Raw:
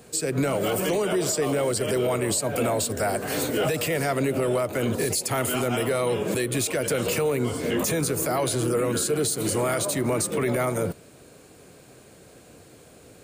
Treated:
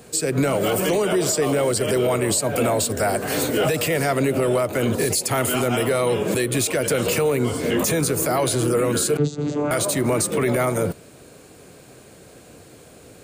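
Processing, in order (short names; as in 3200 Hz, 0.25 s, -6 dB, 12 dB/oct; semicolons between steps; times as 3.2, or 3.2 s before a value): 9.17–9.71 vocoder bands 16, saw 147 Hz; gain +4 dB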